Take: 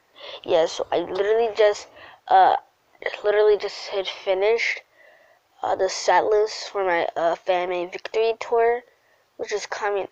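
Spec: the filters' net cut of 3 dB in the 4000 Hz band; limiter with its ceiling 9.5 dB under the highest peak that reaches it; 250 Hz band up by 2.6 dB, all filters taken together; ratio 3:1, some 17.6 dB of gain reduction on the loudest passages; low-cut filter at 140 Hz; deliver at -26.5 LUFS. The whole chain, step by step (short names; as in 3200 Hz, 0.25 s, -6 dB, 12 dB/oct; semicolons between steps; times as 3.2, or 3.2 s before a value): HPF 140 Hz; bell 250 Hz +5.5 dB; bell 4000 Hz -4 dB; compressor 3:1, threshold -37 dBFS; gain +13 dB; limiter -16 dBFS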